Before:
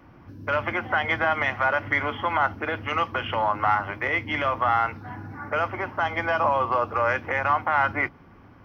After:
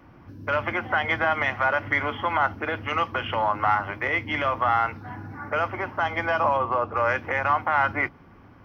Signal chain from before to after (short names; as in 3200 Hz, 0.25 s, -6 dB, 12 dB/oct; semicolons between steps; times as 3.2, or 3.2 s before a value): 6.57–6.97 LPF 1900 Hz 6 dB/oct